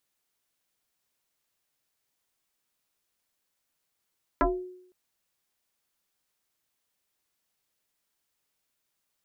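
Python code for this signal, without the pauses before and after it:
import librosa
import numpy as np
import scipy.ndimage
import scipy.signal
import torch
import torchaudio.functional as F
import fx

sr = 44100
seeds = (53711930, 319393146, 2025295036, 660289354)

y = fx.fm2(sr, length_s=0.51, level_db=-17.5, carrier_hz=365.0, ratio=0.89, index=4.1, index_s=0.31, decay_s=0.71, shape='exponential')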